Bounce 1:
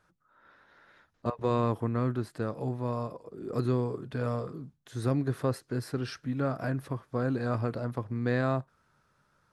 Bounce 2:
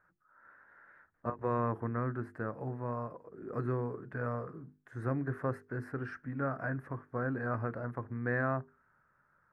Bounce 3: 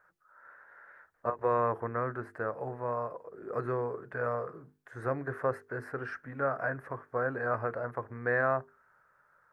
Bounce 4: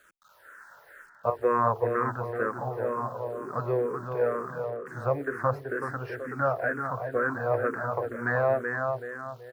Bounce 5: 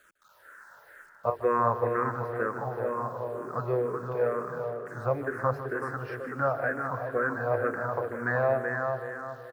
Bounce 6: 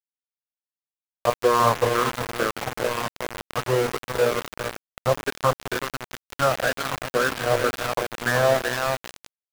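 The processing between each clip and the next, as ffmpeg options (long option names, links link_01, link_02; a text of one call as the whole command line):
ffmpeg -i in.wav -af "highshelf=frequency=2500:width_type=q:width=3:gain=-14,bandreject=frequency=50:width_type=h:width=6,bandreject=frequency=100:width_type=h:width=6,bandreject=frequency=150:width_type=h:width=6,bandreject=frequency=200:width_type=h:width=6,bandreject=frequency=250:width_type=h:width=6,bandreject=frequency=300:width_type=h:width=6,bandreject=frequency=350:width_type=h:width=6,bandreject=frequency=400:width_type=h:width=6,bandreject=frequency=450:width_type=h:width=6,volume=-5.5dB" out.wav
ffmpeg -i in.wav -af "lowshelf=frequency=360:width_type=q:width=1.5:gain=-8,volume=4.5dB" out.wav
ffmpeg -i in.wav -filter_complex "[0:a]acrusher=bits=10:mix=0:aa=0.000001,asplit=2[link_01][link_02];[link_02]adelay=378,lowpass=frequency=2400:poles=1,volume=-5.5dB,asplit=2[link_03][link_04];[link_04]adelay=378,lowpass=frequency=2400:poles=1,volume=0.41,asplit=2[link_05][link_06];[link_06]adelay=378,lowpass=frequency=2400:poles=1,volume=0.41,asplit=2[link_07][link_08];[link_08]adelay=378,lowpass=frequency=2400:poles=1,volume=0.41,asplit=2[link_09][link_10];[link_10]adelay=378,lowpass=frequency=2400:poles=1,volume=0.41[link_11];[link_01][link_03][link_05][link_07][link_09][link_11]amix=inputs=6:normalize=0,asplit=2[link_12][link_13];[link_13]afreqshift=-2.1[link_14];[link_12][link_14]amix=inputs=2:normalize=1,volume=7dB" out.wav
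ffmpeg -i in.wav -af "aecho=1:1:153|306|459|612|765|918|1071:0.224|0.134|0.0806|0.0484|0.029|0.0174|0.0104,volume=-1dB" out.wav
ffmpeg -i in.wav -af "aeval=exprs='val(0)*gte(abs(val(0)),0.0398)':channel_layout=same,volume=6.5dB" out.wav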